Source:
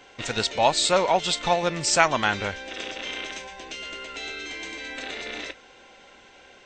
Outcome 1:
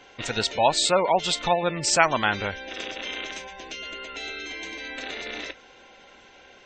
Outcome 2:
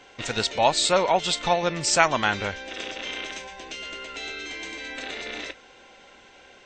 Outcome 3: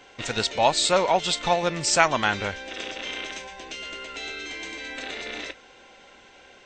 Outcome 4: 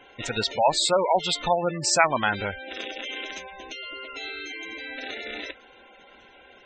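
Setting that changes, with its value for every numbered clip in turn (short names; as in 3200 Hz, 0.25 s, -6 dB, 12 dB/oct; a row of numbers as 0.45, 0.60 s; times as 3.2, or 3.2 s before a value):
spectral gate, under each frame's peak: -25, -40, -55, -15 dB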